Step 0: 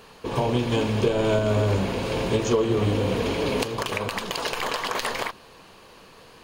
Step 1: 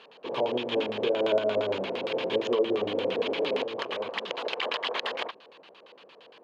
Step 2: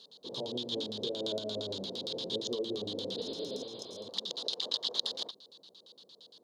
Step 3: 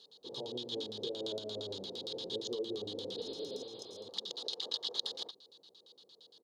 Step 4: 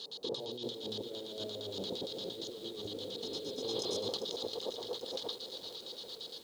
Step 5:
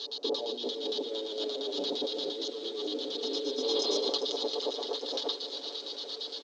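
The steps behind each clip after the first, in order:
auto-filter low-pass square 8.7 Hz 570–3,300 Hz; high-pass filter 330 Hz 12 dB per octave; level −5 dB
healed spectral selection 0:03.21–0:04.05, 720–5,000 Hz both; drawn EQ curve 190 Hz 0 dB, 2,500 Hz −24 dB, 3,700 Hz +11 dB; level −3 dB
comb filter 2.4 ms, depth 34%; level −4.5 dB
compressor whose output falls as the input rises −49 dBFS, ratio −1; feedback echo at a low word length 397 ms, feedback 80%, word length 10 bits, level −11 dB; level +7.5 dB
elliptic band-pass filter 270–5,900 Hz, stop band 50 dB; comb filter 7 ms, depth 70%; level +6 dB

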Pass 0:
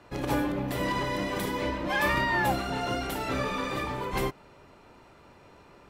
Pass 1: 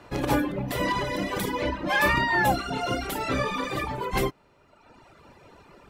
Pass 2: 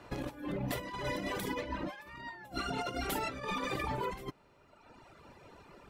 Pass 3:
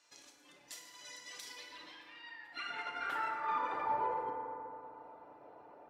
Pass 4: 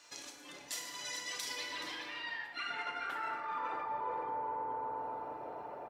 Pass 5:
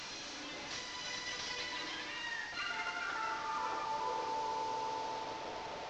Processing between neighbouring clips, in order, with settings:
reverb reduction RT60 1.3 s; level +5 dB
compressor whose output falls as the input rises −30 dBFS, ratio −0.5; level −7.5 dB
band-pass filter sweep 6,400 Hz → 670 Hz, 0:01.21–0:04.11; feedback delay network reverb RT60 3.2 s, low-frequency decay 1.2×, high-frequency decay 0.35×, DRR 0 dB; level +2.5 dB
slap from a distant wall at 73 metres, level −7 dB; reversed playback; downward compressor 8 to 1, threshold −46 dBFS, peak gain reduction 16 dB; reversed playback; level +10 dB
linear delta modulator 32 kbit/s, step −38.5 dBFS

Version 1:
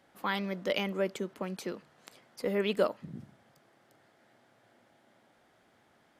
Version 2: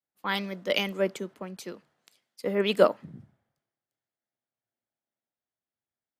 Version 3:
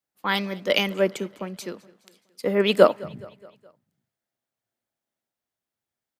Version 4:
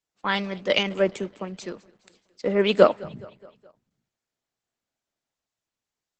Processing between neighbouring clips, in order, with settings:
multiband upward and downward expander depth 100%
repeating echo 210 ms, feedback 53%, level −22.5 dB; level +5 dB
Opus 12 kbit/s 48,000 Hz

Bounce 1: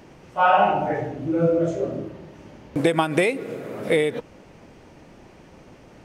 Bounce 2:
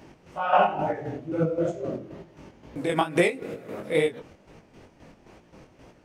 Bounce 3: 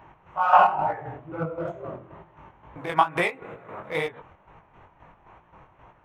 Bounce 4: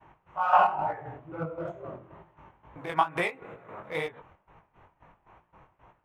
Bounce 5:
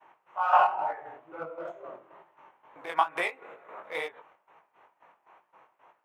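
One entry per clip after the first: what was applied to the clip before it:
square-wave tremolo 3.8 Hz, depth 60%, duty 45%; chorus effect 2.2 Hz, delay 17 ms, depth 6.3 ms; level +1.5 dB
adaptive Wiener filter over 9 samples; graphic EQ with 10 bands 250 Hz −11 dB, 500 Hz −6 dB, 1,000 Hz +11 dB, 8,000 Hz −7 dB
downward expander −50 dBFS; level −4.5 dB
high-pass filter 480 Hz 12 dB per octave

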